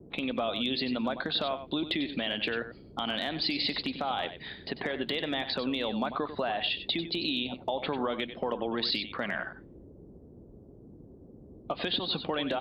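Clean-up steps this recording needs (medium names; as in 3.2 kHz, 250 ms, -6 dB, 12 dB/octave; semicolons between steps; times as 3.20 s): clip repair -19.5 dBFS; noise print and reduce 28 dB; inverse comb 95 ms -11 dB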